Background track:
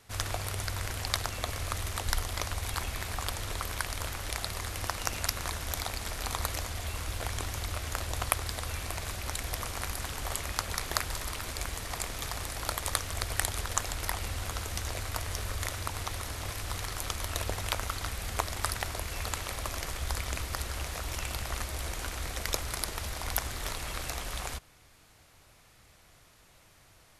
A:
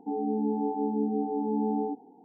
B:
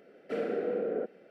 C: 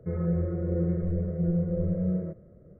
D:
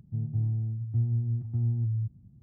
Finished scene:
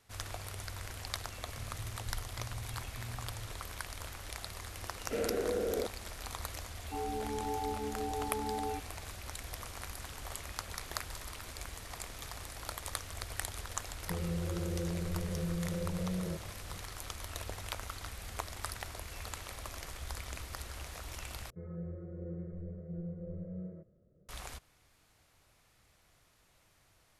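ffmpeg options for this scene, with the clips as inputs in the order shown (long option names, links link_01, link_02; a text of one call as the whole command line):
ffmpeg -i bed.wav -i cue0.wav -i cue1.wav -i cue2.wav -i cue3.wav -filter_complex "[3:a]asplit=2[link_01][link_02];[0:a]volume=-8.5dB[link_03];[1:a]highpass=520[link_04];[link_01]acompressor=threshold=-30dB:ratio=6:attack=3.2:release=140:knee=1:detection=peak[link_05];[link_03]asplit=2[link_06][link_07];[link_06]atrim=end=21.504[link_08];[link_02]atrim=end=2.79,asetpts=PTS-STARTPTS,volume=-15dB[link_09];[link_07]atrim=start=24.286[link_10];[4:a]atrim=end=2.42,asetpts=PTS-STARTPTS,volume=-18dB,afade=type=in:duration=0.004:curve=hsin,afade=type=out:start_time=2.416:duration=0.004:curve=hsin,adelay=1430[link_11];[2:a]atrim=end=1.3,asetpts=PTS-STARTPTS,volume=-2dB,afade=type=in:duration=0.004:curve=hsin,afade=type=out:start_time=1.296:duration=0.004:curve=hsin,adelay=212121S[link_12];[link_04]atrim=end=2.24,asetpts=PTS-STARTPTS,volume=-2dB,afade=type=in:duration=0.004:curve=hsin,afade=type=out:start_time=2.236:duration=0.004:curve=hsin,adelay=6850[link_13];[link_05]atrim=end=2.79,asetpts=PTS-STARTPTS,volume=-2.5dB,afade=type=in:duration=0.004:curve=hsin,afade=type=out:start_time=2.786:duration=0.004:curve=hsin,adelay=14040[link_14];[link_08][link_09]acrossfade=duration=0.004:curve1=hsin:curve2=hsin[link_15];[link_15][link_10]acrossfade=duration=0.004:curve1=hsin:curve2=hsin[link_16];[link_16][link_11][link_12][link_13][link_14]amix=inputs=5:normalize=0" out.wav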